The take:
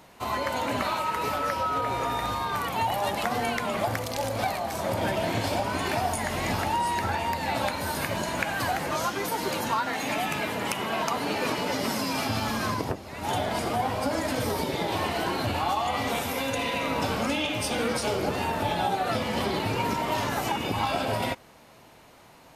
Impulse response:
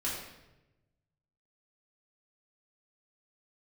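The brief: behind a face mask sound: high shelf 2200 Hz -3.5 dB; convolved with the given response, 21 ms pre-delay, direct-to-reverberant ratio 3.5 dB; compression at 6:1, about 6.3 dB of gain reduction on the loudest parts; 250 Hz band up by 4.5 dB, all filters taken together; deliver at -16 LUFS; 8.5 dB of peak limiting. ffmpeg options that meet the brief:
-filter_complex "[0:a]equalizer=f=250:t=o:g=5.5,acompressor=threshold=-28dB:ratio=6,alimiter=limit=-24dB:level=0:latency=1,asplit=2[a][b];[1:a]atrim=start_sample=2205,adelay=21[c];[b][c]afir=irnorm=-1:irlink=0,volume=-8.5dB[d];[a][d]amix=inputs=2:normalize=0,highshelf=f=2.2k:g=-3.5,volume=16.5dB"

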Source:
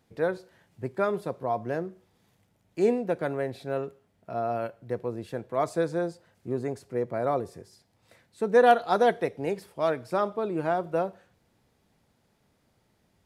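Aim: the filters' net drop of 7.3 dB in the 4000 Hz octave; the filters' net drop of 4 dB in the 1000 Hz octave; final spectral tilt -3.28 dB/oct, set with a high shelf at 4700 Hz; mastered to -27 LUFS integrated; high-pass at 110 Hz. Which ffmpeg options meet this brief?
-af "highpass=110,equalizer=f=1k:t=o:g=-6.5,equalizer=f=4k:t=o:g=-7,highshelf=f=4.7k:g=-4.5,volume=3.5dB"

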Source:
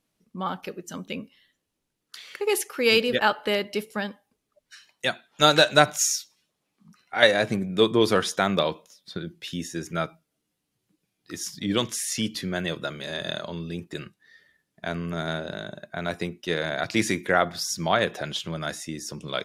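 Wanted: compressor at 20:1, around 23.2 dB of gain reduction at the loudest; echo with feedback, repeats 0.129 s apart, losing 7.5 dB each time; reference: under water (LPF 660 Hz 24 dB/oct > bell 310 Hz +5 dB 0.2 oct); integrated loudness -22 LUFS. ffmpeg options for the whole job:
-af "acompressor=threshold=-35dB:ratio=20,lowpass=f=660:w=0.5412,lowpass=f=660:w=1.3066,equalizer=f=310:t=o:w=0.2:g=5,aecho=1:1:129|258|387|516|645:0.422|0.177|0.0744|0.0312|0.0131,volume=20.5dB"

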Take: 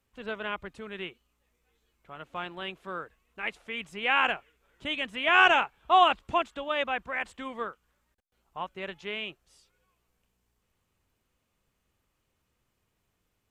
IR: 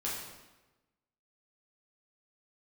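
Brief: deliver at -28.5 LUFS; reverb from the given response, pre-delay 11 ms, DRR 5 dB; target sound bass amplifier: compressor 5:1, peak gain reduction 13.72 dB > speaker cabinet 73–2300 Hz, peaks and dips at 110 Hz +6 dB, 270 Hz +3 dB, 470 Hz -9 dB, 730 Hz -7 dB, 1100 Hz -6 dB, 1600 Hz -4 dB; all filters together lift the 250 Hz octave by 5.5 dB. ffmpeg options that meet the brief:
-filter_complex "[0:a]equalizer=f=250:t=o:g=6,asplit=2[a][b];[1:a]atrim=start_sample=2205,adelay=11[c];[b][c]afir=irnorm=-1:irlink=0,volume=-9dB[d];[a][d]amix=inputs=2:normalize=0,acompressor=threshold=-29dB:ratio=5,highpass=f=73:w=0.5412,highpass=f=73:w=1.3066,equalizer=f=110:t=q:w=4:g=6,equalizer=f=270:t=q:w=4:g=3,equalizer=f=470:t=q:w=4:g=-9,equalizer=f=730:t=q:w=4:g=-7,equalizer=f=1.1k:t=q:w=4:g=-6,equalizer=f=1.6k:t=q:w=4:g=-4,lowpass=f=2.3k:w=0.5412,lowpass=f=2.3k:w=1.3066,volume=10dB"

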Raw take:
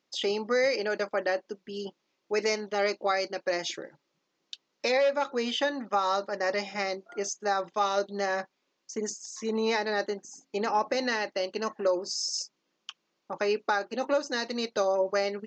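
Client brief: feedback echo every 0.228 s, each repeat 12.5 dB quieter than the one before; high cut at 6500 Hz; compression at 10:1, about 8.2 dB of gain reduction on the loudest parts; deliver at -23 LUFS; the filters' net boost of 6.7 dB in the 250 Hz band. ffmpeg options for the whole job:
-af "lowpass=6.5k,equalizer=f=250:t=o:g=8,acompressor=threshold=-28dB:ratio=10,aecho=1:1:228|456|684:0.237|0.0569|0.0137,volume=10.5dB"

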